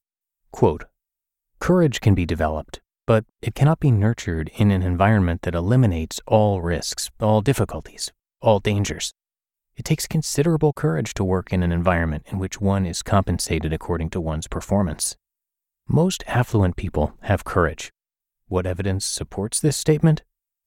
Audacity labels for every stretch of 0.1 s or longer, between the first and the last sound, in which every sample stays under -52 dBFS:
0.880000	1.580000	silence
2.790000	3.080000	silence
3.290000	3.420000	silence
8.110000	8.420000	silence
9.110000	9.770000	silence
15.160000	15.870000	silence
17.900000	18.480000	silence